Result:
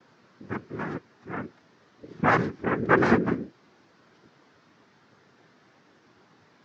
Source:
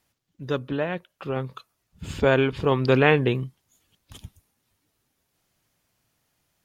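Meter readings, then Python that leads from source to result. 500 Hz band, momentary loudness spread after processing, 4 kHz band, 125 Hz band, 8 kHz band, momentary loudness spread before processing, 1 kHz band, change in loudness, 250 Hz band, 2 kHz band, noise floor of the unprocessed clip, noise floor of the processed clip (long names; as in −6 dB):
−6.0 dB, 18 LU, −12.0 dB, −7.0 dB, can't be measured, 19 LU, +2.0 dB, −3.0 dB, −0.5 dB, −0.5 dB, −76 dBFS, −61 dBFS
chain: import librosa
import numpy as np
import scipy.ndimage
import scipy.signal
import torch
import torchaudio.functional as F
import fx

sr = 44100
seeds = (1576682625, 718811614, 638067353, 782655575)

y = fx.small_body(x, sr, hz=(200.0, 500.0, 1600.0), ring_ms=40, db=13)
y = fx.dmg_buzz(y, sr, base_hz=400.0, harmonics=9, level_db=-35.0, tilt_db=-2, odd_only=False)
y = fx.noise_vocoder(y, sr, seeds[0], bands=3)
y = scipy.signal.sosfilt(scipy.signal.butter(4, 5700.0, 'lowpass', fs=sr, output='sos'), y)
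y = fx.spectral_expand(y, sr, expansion=1.5)
y = y * librosa.db_to_amplitude(-8.5)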